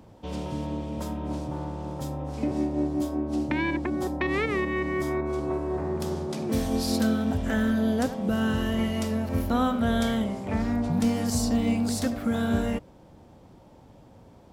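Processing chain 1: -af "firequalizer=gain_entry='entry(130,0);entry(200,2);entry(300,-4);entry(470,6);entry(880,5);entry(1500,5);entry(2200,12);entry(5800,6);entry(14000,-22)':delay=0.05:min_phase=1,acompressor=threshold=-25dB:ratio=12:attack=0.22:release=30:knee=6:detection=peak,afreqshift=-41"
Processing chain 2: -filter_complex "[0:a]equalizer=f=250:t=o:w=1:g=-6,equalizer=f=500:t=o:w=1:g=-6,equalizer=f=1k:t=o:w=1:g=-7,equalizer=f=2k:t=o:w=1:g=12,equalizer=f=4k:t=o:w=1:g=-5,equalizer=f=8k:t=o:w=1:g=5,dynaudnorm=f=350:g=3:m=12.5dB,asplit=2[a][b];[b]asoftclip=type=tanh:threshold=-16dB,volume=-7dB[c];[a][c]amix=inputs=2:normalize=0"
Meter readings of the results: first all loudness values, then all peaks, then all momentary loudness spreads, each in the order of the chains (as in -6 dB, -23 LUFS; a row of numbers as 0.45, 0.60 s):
-31.5, -16.0 LUFS; -18.0, -1.5 dBFS; 7, 9 LU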